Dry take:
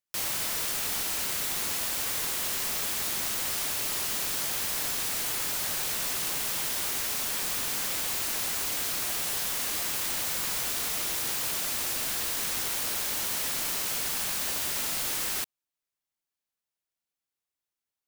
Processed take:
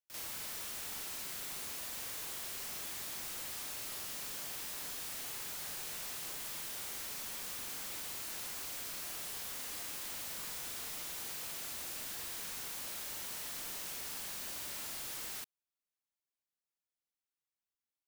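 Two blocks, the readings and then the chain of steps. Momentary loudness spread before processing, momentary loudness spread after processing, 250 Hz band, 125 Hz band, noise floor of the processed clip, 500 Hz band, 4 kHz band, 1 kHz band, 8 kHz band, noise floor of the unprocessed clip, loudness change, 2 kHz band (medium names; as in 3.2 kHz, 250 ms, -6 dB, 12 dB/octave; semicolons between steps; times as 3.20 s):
0 LU, 0 LU, -12.0 dB, -12.0 dB, under -85 dBFS, -12.0 dB, -12.0 dB, -12.0 dB, -12.0 dB, under -85 dBFS, -12.0 dB, -12.0 dB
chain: saturation -31.5 dBFS, distortion -11 dB; on a send: reverse echo 42 ms -6.5 dB; on the sum: trim -8.5 dB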